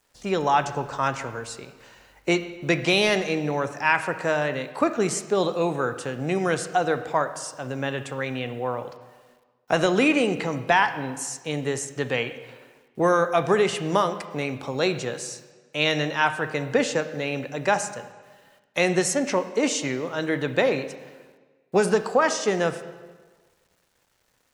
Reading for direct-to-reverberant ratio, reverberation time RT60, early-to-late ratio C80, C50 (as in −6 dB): 10.0 dB, 1.4 s, 13.0 dB, 11.5 dB